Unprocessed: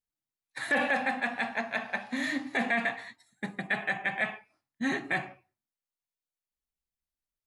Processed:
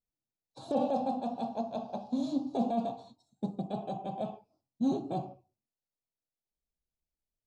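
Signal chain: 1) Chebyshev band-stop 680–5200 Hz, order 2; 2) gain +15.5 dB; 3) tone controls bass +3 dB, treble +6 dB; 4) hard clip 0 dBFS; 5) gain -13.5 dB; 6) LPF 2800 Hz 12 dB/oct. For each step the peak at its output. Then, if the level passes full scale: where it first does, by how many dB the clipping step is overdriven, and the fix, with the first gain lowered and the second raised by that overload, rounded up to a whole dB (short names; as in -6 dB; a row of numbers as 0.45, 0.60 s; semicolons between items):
-21.0, -5.5, -4.5, -4.5, -18.0, -18.5 dBFS; no overload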